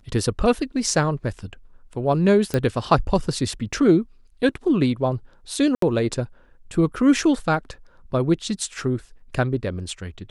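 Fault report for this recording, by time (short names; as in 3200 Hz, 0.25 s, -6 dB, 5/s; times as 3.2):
2.54 pop -10 dBFS
5.75–5.82 gap 73 ms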